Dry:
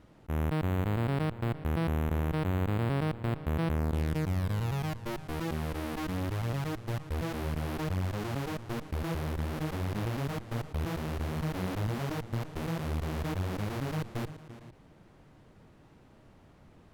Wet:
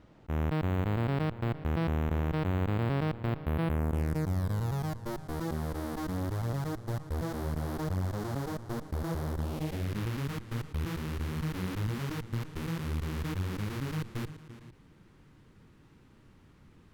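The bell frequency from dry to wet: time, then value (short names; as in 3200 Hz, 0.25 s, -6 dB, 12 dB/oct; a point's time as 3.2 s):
bell -11.5 dB 0.72 oct
3.18 s 11000 Hz
4.28 s 2600 Hz
9.36 s 2600 Hz
10 s 660 Hz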